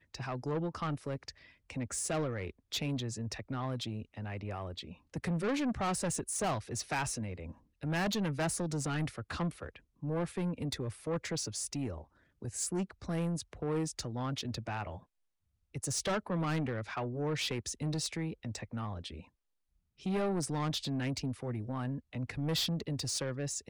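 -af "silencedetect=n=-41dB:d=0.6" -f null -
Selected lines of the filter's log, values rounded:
silence_start: 14.97
silence_end: 15.75 | silence_duration: 0.77
silence_start: 19.20
silence_end: 20.06 | silence_duration: 0.86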